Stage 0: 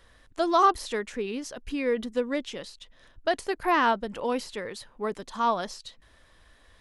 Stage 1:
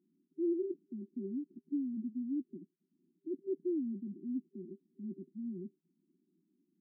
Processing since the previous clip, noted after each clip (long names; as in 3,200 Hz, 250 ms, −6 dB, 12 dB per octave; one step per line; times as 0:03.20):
brick-wall band-pass 160–390 Hz
level −3.5 dB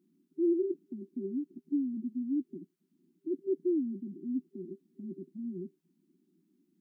dynamic equaliser 210 Hz, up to −6 dB, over −55 dBFS, Q 4.3
level +5.5 dB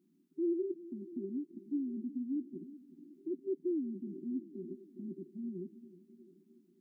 in parallel at 0 dB: downward compressor, threshold −39 dBFS, peak gain reduction 14 dB
on the sum: echo with a time of its own for lows and highs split 350 Hz, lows 367 ms, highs 652 ms, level −15 dB
level −7 dB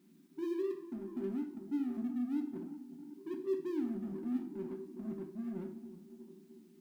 mu-law and A-law mismatch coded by mu
coupled-rooms reverb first 0.45 s, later 1.5 s, DRR 2 dB
level −3.5 dB